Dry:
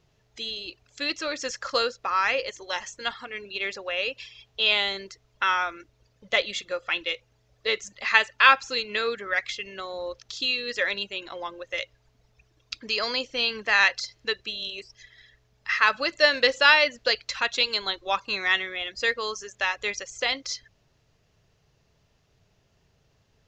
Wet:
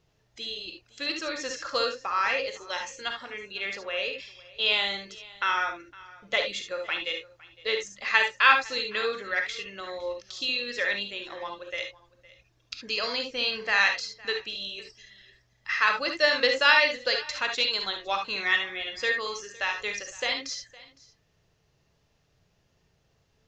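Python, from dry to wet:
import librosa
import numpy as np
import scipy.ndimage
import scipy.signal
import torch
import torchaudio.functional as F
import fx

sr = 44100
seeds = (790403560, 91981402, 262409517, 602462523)

y = x + 10.0 ** (-21.5 / 20.0) * np.pad(x, (int(510 * sr / 1000.0), 0))[:len(x)]
y = fx.rev_gated(y, sr, seeds[0], gate_ms=90, shape='rising', drr_db=4.0)
y = y * librosa.db_to_amplitude(-3.5)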